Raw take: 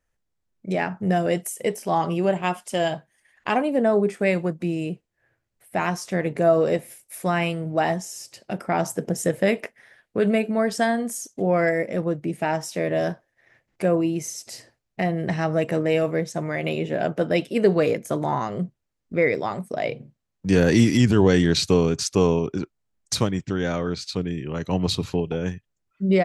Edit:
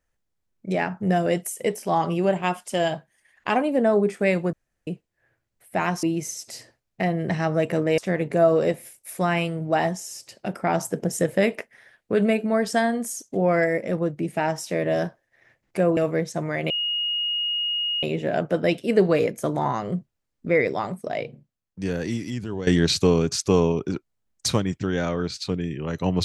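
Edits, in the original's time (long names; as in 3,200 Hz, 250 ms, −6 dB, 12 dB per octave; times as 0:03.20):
0:04.53–0:04.87: fill with room tone
0:14.02–0:15.97: move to 0:06.03
0:16.70: insert tone 2,870 Hz −22.5 dBFS 1.33 s
0:19.53–0:21.34: fade out quadratic, to −14 dB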